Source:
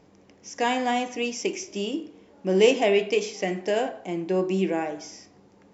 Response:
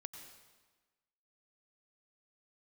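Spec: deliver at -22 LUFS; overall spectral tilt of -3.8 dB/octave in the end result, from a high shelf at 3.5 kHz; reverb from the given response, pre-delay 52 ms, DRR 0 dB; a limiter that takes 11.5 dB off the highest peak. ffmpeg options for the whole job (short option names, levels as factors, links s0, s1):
-filter_complex "[0:a]highshelf=f=3500:g=7,alimiter=limit=0.178:level=0:latency=1,asplit=2[s0][s1];[1:a]atrim=start_sample=2205,adelay=52[s2];[s1][s2]afir=irnorm=-1:irlink=0,volume=1.58[s3];[s0][s3]amix=inputs=2:normalize=0,volume=1.26"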